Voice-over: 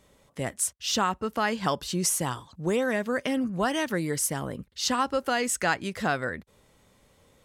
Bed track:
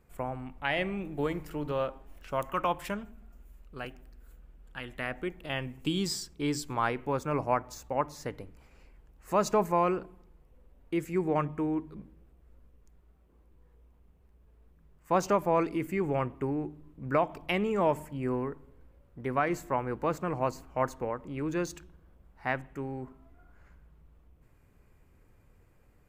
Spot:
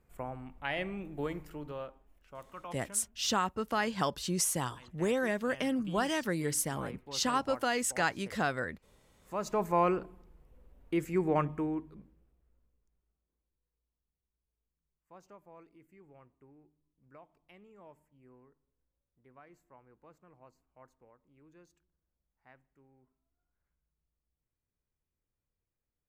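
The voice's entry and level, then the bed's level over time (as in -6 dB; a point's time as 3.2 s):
2.35 s, -4.5 dB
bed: 1.37 s -5 dB
2.23 s -16 dB
9.07 s -16 dB
9.8 s -0.5 dB
11.46 s -0.5 dB
13.66 s -28.5 dB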